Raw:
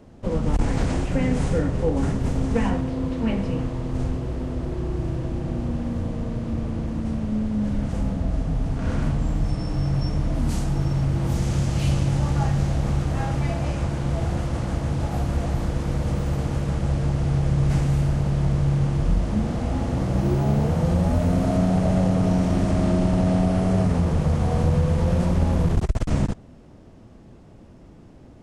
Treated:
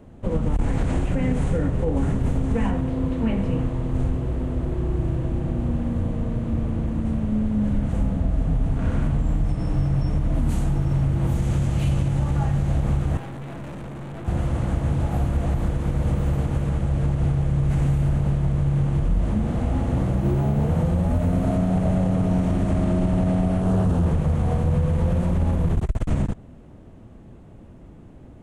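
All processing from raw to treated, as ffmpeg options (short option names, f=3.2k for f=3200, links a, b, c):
-filter_complex "[0:a]asettb=1/sr,asplit=3[a][b][c];[a]atrim=end=13.174[d];[b]atrim=start=13.17:end=14.28,asetpts=PTS-STARTPTS,afade=t=in:d=0.004:c=qsin,afade=t=out:st=1.106:d=0.004:c=qsin,highpass=110,equalizer=f=280:w=0.59:g=8,aeval=exprs='(tanh(56.2*val(0)+0.3)-tanh(0.3))/56.2':c=same[e];[c]atrim=start=14.276[f];[d][e]acrossfade=d=0.004:c1=hsin:c2=qsin[g];[g][f]acrossfade=d=0.004:c1=qsin:c2=hsin,asettb=1/sr,asplit=3[h][i][j];[h]atrim=end=23.624[k];[i]atrim=start=23.62:end=24.06,asetpts=PTS-STARTPTS,afade=t=in:d=0.004:c=qsin,afade=t=out:st=0.436:d=0.004:c=qsin,asuperstop=centerf=2100:order=4:qfactor=2.3,asoftclip=type=hard:threshold=-18dB[l];[j]atrim=start=24.056[m];[k][l]acrossfade=d=0.004:c1=hsin:c2=qsin[n];[n][m]acrossfade=d=0.004:c1=qsin:c2=hsin,lowshelf=f=170:g=4,alimiter=limit=-13dB:level=0:latency=1:release=95,equalizer=f=5.1k:w=2.1:g=-10.5"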